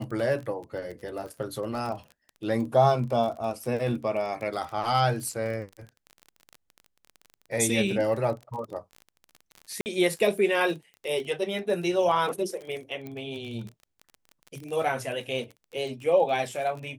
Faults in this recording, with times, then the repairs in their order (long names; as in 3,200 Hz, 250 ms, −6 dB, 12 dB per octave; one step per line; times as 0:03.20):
surface crackle 28 per second −34 dBFS
0:09.81–0:09.86: drop-out 49 ms
0:13.07: click −25 dBFS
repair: click removal
repair the gap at 0:09.81, 49 ms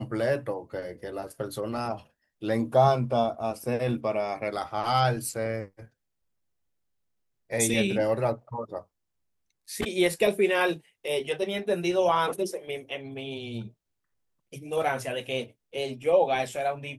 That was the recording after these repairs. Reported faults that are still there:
none of them is left